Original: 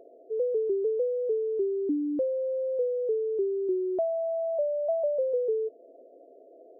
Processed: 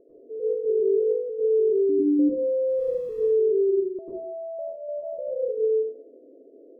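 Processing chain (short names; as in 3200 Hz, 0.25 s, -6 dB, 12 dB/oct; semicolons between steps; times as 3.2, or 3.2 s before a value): limiter -26.5 dBFS, peak gain reduction 6 dB; 2.69–3.2 requantised 8-bit, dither triangular; running mean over 59 samples; plate-style reverb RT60 0.61 s, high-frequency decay 0.85×, pre-delay 85 ms, DRR -7.5 dB; gain +2.5 dB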